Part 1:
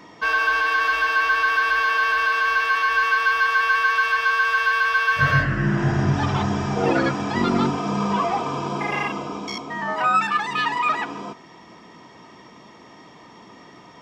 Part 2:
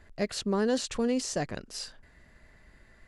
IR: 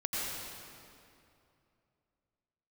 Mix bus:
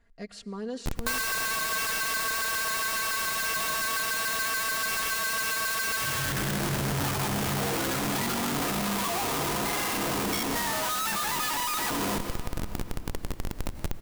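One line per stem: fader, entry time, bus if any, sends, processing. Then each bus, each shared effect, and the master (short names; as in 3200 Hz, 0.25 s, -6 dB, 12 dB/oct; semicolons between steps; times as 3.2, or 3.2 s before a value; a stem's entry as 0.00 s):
-2.0 dB, 0.85 s, send -15 dB, echo send -14.5 dB, Schmitt trigger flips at -37 dBFS
-12.5 dB, 0.00 s, send -22 dB, no echo send, LPF 4000 Hz 6 dB/oct; comb 4.3 ms, depth 74%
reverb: on, RT60 2.6 s, pre-delay 81 ms
echo: echo 0.188 s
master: high shelf 5700 Hz +9 dB; compressor 6:1, threshold -26 dBFS, peak gain reduction 9 dB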